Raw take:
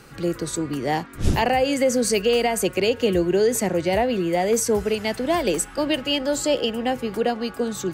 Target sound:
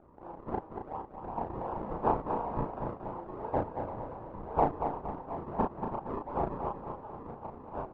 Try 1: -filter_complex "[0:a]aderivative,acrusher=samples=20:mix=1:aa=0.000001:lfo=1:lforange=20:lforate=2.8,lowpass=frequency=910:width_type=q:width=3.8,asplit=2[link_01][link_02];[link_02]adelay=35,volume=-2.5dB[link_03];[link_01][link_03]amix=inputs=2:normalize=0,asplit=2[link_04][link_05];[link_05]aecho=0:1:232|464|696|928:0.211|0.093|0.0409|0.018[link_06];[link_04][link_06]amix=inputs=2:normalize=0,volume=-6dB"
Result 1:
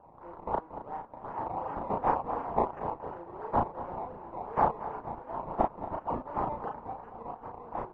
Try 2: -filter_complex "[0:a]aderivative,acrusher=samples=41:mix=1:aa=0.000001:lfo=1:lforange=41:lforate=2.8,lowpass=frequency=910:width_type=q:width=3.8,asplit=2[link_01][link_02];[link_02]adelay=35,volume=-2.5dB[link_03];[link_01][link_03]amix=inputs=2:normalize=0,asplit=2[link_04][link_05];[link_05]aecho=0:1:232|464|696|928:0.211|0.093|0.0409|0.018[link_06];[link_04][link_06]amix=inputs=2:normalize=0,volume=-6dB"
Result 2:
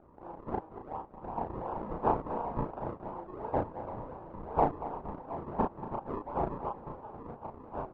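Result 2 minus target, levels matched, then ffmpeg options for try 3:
echo-to-direct −6.5 dB
-filter_complex "[0:a]aderivative,acrusher=samples=41:mix=1:aa=0.000001:lfo=1:lforange=41:lforate=2.8,lowpass=frequency=910:width_type=q:width=3.8,asplit=2[link_01][link_02];[link_02]adelay=35,volume=-2.5dB[link_03];[link_01][link_03]amix=inputs=2:normalize=0,asplit=2[link_04][link_05];[link_05]aecho=0:1:232|464|696|928|1160:0.447|0.197|0.0865|0.0381|0.0167[link_06];[link_04][link_06]amix=inputs=2:normalize=0,volume=-6dB"

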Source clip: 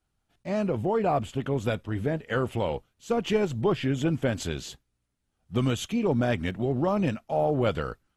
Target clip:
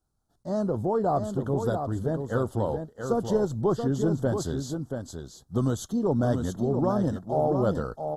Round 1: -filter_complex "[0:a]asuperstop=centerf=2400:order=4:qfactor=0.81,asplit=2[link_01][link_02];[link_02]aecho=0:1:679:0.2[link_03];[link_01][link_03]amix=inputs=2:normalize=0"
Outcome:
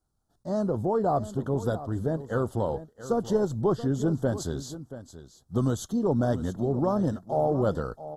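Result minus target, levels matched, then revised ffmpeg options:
echo-to-direct −7.5 dB
-filter_complex "[0:a]asuperstop=centerf=2400:order=4:qfactor=0.81,asplit=2[link_01][link_02];[link_02]aecho=0:1:679:0.473[link_03];[link_01][link_03]amix=inputs=2:normalize=0"

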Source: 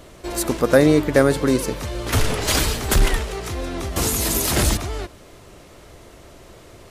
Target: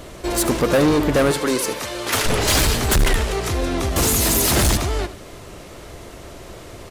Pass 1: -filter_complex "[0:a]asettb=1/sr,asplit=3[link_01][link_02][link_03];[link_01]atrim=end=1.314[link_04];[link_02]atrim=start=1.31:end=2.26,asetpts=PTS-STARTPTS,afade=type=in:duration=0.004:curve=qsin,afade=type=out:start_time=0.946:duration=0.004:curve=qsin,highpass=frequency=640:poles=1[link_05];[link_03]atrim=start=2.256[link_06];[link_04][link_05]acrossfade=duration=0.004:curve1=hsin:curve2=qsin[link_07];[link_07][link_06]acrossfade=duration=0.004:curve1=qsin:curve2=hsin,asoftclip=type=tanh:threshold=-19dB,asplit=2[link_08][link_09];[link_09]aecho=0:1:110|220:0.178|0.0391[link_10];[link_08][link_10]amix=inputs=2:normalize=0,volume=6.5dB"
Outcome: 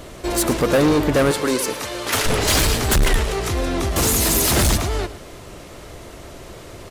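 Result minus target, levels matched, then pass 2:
echo 33 ms late
-filter_complex "[0:a]asettb=1/sr,asplit=3[link_01][link_02][link_03];[link_01]atrim=end=1.314[link_04];[link_02]atrim=start=1.31:end=2.26,asetpts=PTS-STARTPTS,afade=type=in:duration=0.004:curve=qsin,afade=type=out:start_time=0.946:duration=0.004:curve=qsin,highpass=frequency=640:poles=1[link_05];[link_03]atrim=start=2.256[link_06];[link_04][link_05]acrossfade=duration=0.004:curve1=hsin:curve2=qsin[link_07];[link_07][link_06]acrossfade=duration=0.004:curve1=qsin:curve2=hsin,asoftclip=type=tanh:threshold=-19dB,asplit=2[link_08][link_09];[link_09]aecho=0:1:77|154:0.178|0.0391[link_10];[link_08][link_10]amix=inputs=2:normalize=0,volume=6.5dB"

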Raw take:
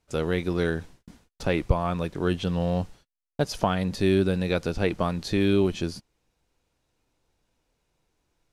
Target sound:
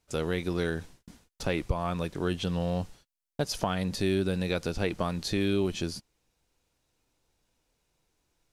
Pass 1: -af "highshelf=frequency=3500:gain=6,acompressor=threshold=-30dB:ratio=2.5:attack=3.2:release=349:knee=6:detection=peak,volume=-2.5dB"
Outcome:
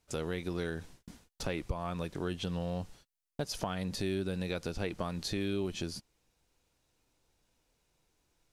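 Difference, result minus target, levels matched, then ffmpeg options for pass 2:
downward compressor: peak gain reduction +7 dB
-af "highshelf=frequency=3500:gain=6,acompressor=threshold=-18.5dB:ratio=2.5:attack=3.2:release=349:knee=6:detection=peak,volume=-2.5dB"

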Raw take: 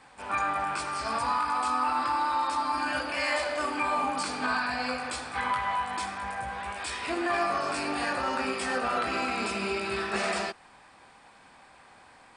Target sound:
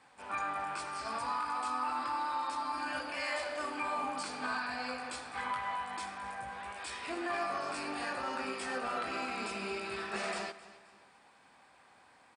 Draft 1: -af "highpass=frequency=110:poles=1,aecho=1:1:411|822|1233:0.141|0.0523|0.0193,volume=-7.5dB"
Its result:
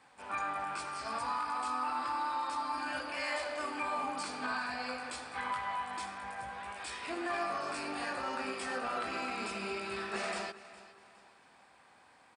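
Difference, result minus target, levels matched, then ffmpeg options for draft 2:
echo 149 ms late
-af "highpass=frequency=110:poles=1,aecho=1:1:262|524|786:0.141|0.0523|0.0193,volume=-7.5dB"

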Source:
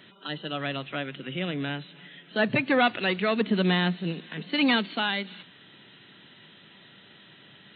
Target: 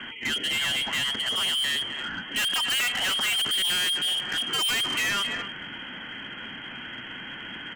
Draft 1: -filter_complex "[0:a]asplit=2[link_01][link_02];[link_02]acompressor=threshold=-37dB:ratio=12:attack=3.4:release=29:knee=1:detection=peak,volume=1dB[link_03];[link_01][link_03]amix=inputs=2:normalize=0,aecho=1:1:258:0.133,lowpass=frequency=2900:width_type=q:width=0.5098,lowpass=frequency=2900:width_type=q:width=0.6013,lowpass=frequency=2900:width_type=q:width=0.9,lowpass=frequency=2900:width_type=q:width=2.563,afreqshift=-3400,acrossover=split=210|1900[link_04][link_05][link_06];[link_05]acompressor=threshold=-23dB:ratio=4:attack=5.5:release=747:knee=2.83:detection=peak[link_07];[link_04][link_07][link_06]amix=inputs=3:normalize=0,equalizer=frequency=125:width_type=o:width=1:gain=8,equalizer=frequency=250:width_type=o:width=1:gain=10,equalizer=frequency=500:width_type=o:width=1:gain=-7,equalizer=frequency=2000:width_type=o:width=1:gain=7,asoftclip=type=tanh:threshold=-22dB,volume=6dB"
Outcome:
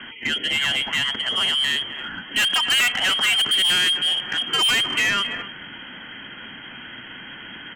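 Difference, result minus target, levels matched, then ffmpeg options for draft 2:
soft clipping: distortion −4 dB
-filter_complex "[0:a]asplit=2[link_01][link_02];[link_02]acompressor=threshold=-37dB:ratio=12:attack=3.4:release=29:knee=1:detection=peak,volume=1dB[link_03];[link_01][link_03]amix=inputs=2:normalize=0,aecho=1:1:258:0.133,lowpass=frequency=2900:width_type=q:width=0.5098,lowpass=frequency=2900:width_type=q:width=0.6013,lowpass=frequency=2900:width_type=q:width=0.9,lowpass=frequency=2900:width_type=q:width=2.563,afreqshift=-3400,acrossover=split=210|1900[link_04][link_05][link_06];[link_05]acompressor=threshold=-23dB:ratio=4:attack=5.5:release=747:knee=2.83:detection=peak[link_07];[link_04][link_07][link_06]amix=inputs=3:normalize=0,equalizer=frequency=125:width_type=o:width=1:gain=8,equalizer=frequency=250:width_type=o:width=1:gain=10,equalizer=frequency=500:width_type=o:width=1:gain=-7,equalizer=frequency=2000:width_type=o:width=1:gain=7,asoftclip=type=tanh:threshold=-30dB,volume=6dB"

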